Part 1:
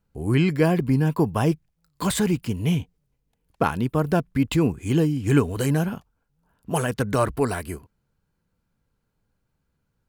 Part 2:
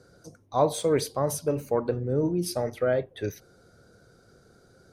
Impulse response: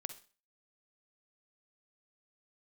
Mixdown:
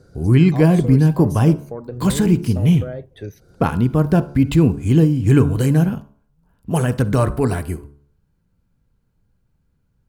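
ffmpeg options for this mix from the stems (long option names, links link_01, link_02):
-filter_complex "[0:a]bandreject=frequency=71.3:width_type=h:width=4,bandreject=frequency=142.6:width_type=h:width=4,bandreject=frequency=213.9:width_type=h:width=4,bandreject=frequency=285.2:width_type=h:width=4,bandreject=frequency=356.5:width_type=h:width=4,bandreject=frequency=427.8:width_type=h:width=4,bandreject=frequency=499.1:width_type=h:width=4,bandreject=frequency=570.4:width_type=h:width=4,bandreject=frequency=641.7:width_type=h:width=4,bandreject=frequency=713:width_type=h:width=4,bandreject=frequency=784.3:width_type=h:width=4,bandreject=frequency=855.6:width_type=h:width=4,bandreject=frequency=926.9:width_type=h:width=4,bandreject=frequency=998.2:width_type=h:width=4,bandreject=frequency=1069.5:width_type=h:width=4,bandreject=frequency=1140.8:width_type=h:width=4,bandreject=frequency=1212.1:width_type=h:width=4,bandreject=frequency=1283.4:width_type=h:width=4,bandreject=frequency=1354.7:width_type=h:width=4,bandreject=frequency=1426:width_type=h:width=4,bandreject=frequency=1497.3:width_type=h:width=4,bandreject=frequency=1568.6:width_type=h:width=4,volume=-3dB,asplit=2[link_01][link_02];[link_02]volume=-3.5dB[link_03];[1:a]acompressor=threshold=-39dB:ratio=2,volume=0.5dB[link_04];[2:a]atrim=start_sample=2205[link_05];[link_03][link_05]afir=irnorm=-1:irlink=0[link_06];[link_01][link_04][link_06]amix=inputs=3:normalize=0,lowshelf=frequency=290:gain=11"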